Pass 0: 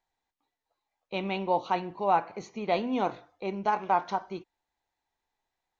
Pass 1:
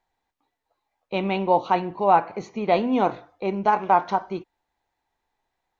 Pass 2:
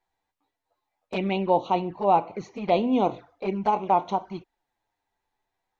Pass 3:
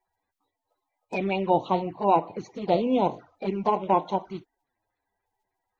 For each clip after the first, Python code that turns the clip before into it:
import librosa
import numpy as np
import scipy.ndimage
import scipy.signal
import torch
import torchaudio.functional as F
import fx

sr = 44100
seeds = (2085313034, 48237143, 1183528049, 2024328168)

y1 = fx.high_shelf(x, sr, hz=3300.0, db=-8.0)
y1 = y1 * 10.0 ** (7.5 / 20.0)
y2 = fx.env_flanger(y1, sr, rest_ms=10.4, full_db=-20.0)
y3 = fx.spec_quant(y2, sr, step_db=30)